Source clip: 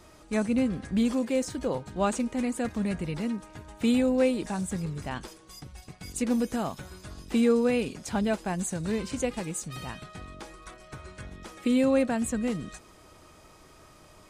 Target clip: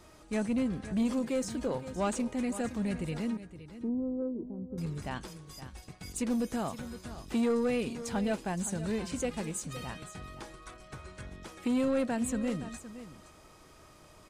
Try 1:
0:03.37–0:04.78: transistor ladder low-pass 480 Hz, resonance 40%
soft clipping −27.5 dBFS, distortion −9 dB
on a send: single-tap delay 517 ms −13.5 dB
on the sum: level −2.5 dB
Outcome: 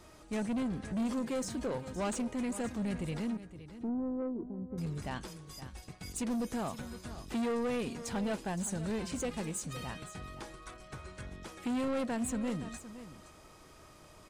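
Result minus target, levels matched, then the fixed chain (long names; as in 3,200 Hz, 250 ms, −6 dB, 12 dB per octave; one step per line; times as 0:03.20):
soft clipping: distortion +7 dB
0:03.37–0:04.78: transistor ladder low-pass 480 Hz, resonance 40%
soft clipping −20.5 dBFS, distortion −15 dB
on a send: single-tap delay 517 ms −13.5 dB
on the sum: level −2.5 dB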